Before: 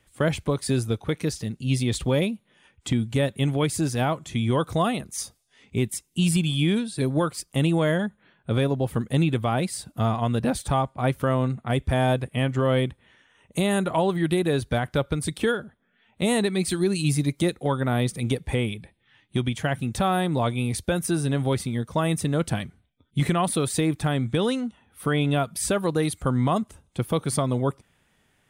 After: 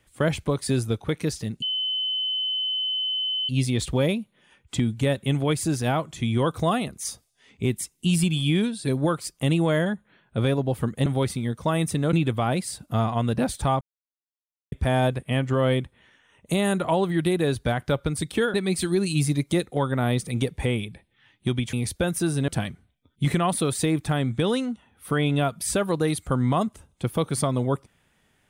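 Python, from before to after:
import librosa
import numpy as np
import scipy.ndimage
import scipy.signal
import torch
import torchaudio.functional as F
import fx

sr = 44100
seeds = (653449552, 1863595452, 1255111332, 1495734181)

y = fx.edit(x, sr, fx.insert_tone(at_s=1.62, length_s=1.87, hz=3040.0, db=-23.5),
    fx.silence(start_s=10.87, length_s=0.91),
    fx.cut(start_s=15.6, length_s=0.83),
    fx.cut(start_s=19.62, length_s=0.99),
    fx.move(start_s=21.36, length_s=1.07, to_s=9.19), tone=tone)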